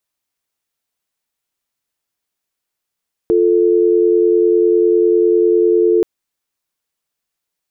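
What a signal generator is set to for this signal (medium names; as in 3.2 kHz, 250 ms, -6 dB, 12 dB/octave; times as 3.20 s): call progress tone dial tone, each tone -12 dBFS 2.73 s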